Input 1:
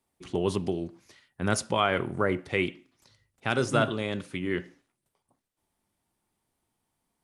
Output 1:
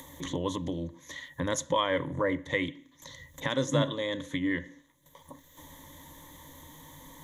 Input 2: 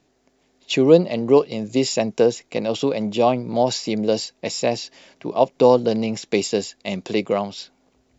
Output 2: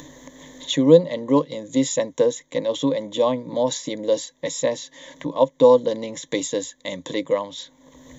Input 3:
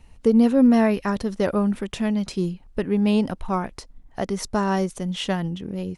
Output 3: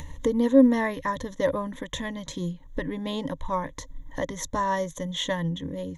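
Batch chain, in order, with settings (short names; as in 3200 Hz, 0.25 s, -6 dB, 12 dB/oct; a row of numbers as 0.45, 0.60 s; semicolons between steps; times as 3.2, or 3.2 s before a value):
upward compressor, threshold -23 dBFS; ripple EQ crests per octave 1.1, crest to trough 17 dB; gain -5 dB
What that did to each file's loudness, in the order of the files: -2.5, -1.0, -4.5 LU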